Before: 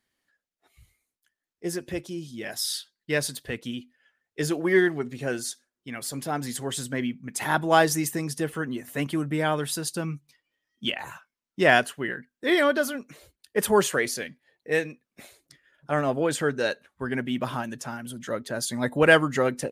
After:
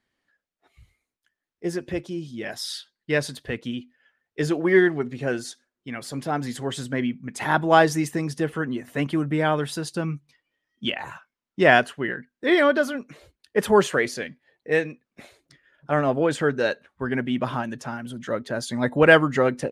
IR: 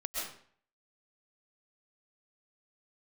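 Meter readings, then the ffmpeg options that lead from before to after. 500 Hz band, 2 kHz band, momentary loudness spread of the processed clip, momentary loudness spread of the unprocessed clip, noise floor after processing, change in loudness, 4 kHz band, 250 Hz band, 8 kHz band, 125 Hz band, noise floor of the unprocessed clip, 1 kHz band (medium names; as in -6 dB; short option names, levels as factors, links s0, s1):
+3.5 dB, +2.0 dB, 16 LU, 15 LU, under -85 dBFS, +2.5 dB, -0.5 dB, +3.5 dB, -6.0 dB, +3.5 dB, under -85 dBFS, +3.0 dB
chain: -af "aemphasis=mode=reproduction:type=50fm,volume=1.41"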